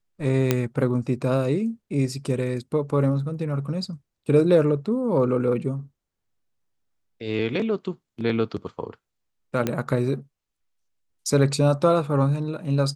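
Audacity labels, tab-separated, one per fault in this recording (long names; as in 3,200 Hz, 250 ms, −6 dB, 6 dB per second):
0.510000	0.510000	click −5 dBFS
9.670000	9.670000	click −10 dBFS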